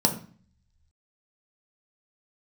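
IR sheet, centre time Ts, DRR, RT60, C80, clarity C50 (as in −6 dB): 12 ms, 2.5 dB, 0.45 s, 15.0 dB, 11.0 dB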